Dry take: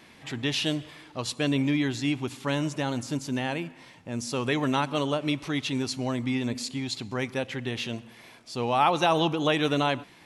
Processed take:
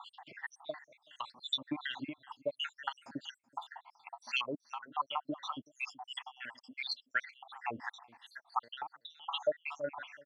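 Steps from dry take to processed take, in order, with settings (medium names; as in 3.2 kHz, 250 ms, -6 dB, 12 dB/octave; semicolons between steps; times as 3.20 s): random holes in the spectrogram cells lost 82%; low-pass that closes with the level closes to 2 kHz, closed at -27 dBFS; resonant low shelf 600 Hz -12.5 dB, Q 3; compression 10:1, threshold -37 dBFS, peak gain reduction 23 dB; on a send: delay 378 ms -22 dB; on the sum: LFO band-pass sine 2.8 Hz 270–3500 Hz; trim +13 dB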